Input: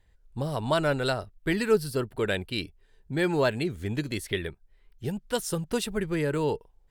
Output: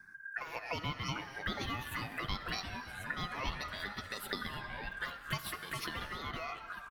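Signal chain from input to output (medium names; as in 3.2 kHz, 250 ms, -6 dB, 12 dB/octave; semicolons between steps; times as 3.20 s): comb 5.5 ms, depth 36%; ring modulator 1.6 kHz; compression 8:1, threshold -40 dBFS, peak gain reduction 19 dB; bass shelf 430 Hz +6.5 dB; touch-sensitive phaser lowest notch 520 Hz, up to 1.7 kHz, full sweep at -38.5 dBFS; gated-style reverb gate 360 ms flat, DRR 11 dB; ever faster or slower copies 728 ms, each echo -3 st, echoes 3, each echo -6 dB; trim +8.5 dB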